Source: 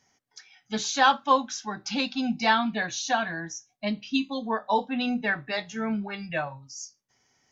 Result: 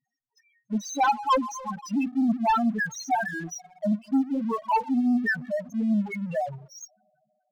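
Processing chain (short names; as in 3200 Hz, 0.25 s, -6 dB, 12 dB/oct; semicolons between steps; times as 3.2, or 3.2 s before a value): spring tank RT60 3.1 s, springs 42/57 ms, chirp 25 ms, DRR 14 dB; loudest bins only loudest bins 2; sample leveller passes 2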